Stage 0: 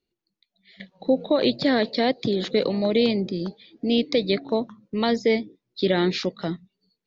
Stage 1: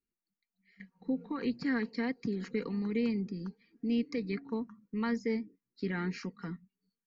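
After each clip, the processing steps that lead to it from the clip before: static phaser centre 1.5 kHz, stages 4; comb 4.3 ms, depth 47%; trim -9 dB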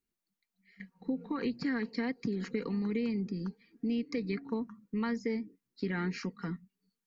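compression, threshold -32 dBFS, peak gain reduction 6 dB; trim +3 dB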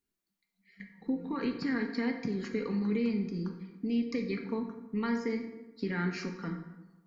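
plate-style reverb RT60 1.1 s, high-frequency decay 0.6×, DRR 3.5 dB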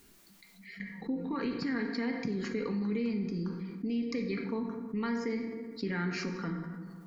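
level flattener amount 50%; trim -3.5 dB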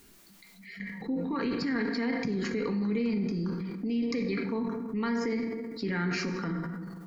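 transient shaper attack -2 dB, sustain +6 dB; trim +3 dB

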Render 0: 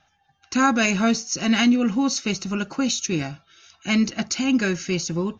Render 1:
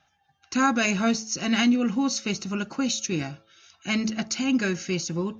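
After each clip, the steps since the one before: high-pass 54 Hz; de-hum 109.2 Hz, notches 9; trim -3 dB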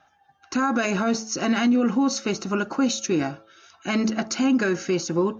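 high-order bell 640 Hz +9 dB 3 oct; peak limiter -13.5 dBFS, peak gain reduction 11 dB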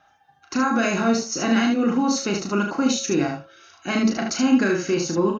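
early reflections 35 ms -5 dB, 75 ms -5 dB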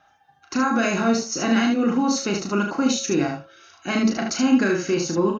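no audible change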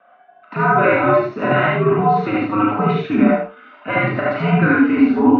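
mistuned SSB -93 Hz 210–3300 Hz; three-band isolator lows -17 dB, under 190 Hz, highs -12 dB, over 2.2 kHz; gated-style reverb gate 110 ms rising, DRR -3 dB; trim +5.5 dB

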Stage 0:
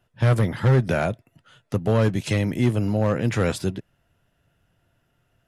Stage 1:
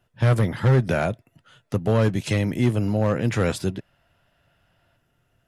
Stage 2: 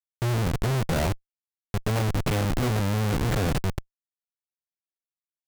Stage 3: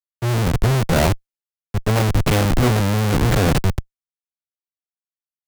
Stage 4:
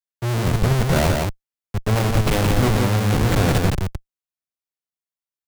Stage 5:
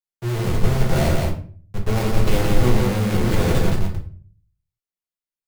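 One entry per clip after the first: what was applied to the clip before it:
time-frequency box 3.79–4.96 s, 520–5400 Hz +6 dB
Schmitt trigger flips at -25.5 dBFS
three bands expanded up and down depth 100%; trim +8 dB
delay 168 ms -3.5 dB; trim -2.5 dB
reverberation RT60 0.45 s, pre-delay 6 ms, DRR -1.5 dB; trim -6.5 dB

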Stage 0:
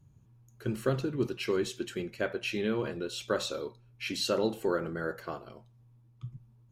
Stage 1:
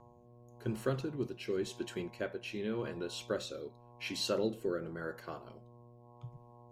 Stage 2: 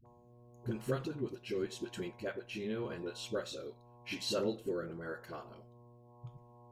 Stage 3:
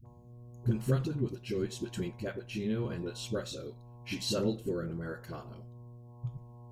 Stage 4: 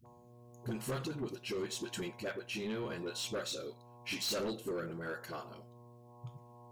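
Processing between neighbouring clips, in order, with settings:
mains buzz 120 Hz, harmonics 9, -53 dBFS 0 dB/octave; rotary cabinet horn 0.9 Hz; trim -3.5 dB
phase dispersion highs, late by 59 ms, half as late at 430 Hz; trim -1.5 dB
tone controls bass +12 dB, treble +5 dB
high-pass 610 Hz 6 dB/octave; saturation -37 dBFS, distortion -10 dB; trim +5 dB

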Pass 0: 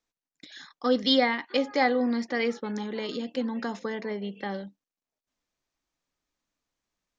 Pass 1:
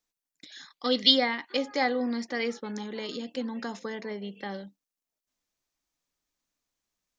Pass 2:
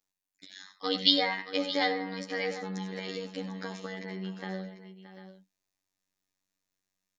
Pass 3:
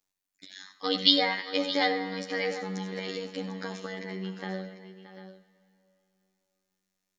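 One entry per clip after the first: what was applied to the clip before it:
time-frequency box 0.73–1.11 s, 1.9–4.9 kHz +9 dB; treble shelf 4.8 kHz +9 dB; trim -3.5 dB
robot voice 94.6 Hz; multi-tap echo 69/85/94/624/746 ms -17/-16.5/-13.5/-14/-14 dB
plate-style reverb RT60 3.2 s, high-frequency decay 0.95×, DRR 15.5 dB; trim +2 dB

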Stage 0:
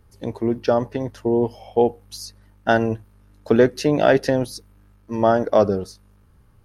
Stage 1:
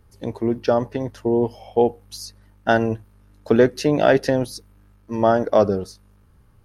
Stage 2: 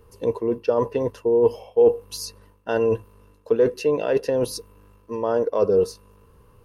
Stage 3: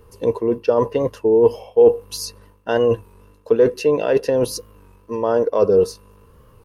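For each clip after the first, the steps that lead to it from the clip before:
no audible change
treble shelf 7.3 kHz +6 dB; reverse; compression 12:1, threshold -25 dBFS, peak gain reduction 16 dB; reverse; small resonant body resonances 470/1000/2700 Hz, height 16 dB, ringing for 35 ms
warped record 33 1/3 rpm, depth 100 cents; trim +4 dB

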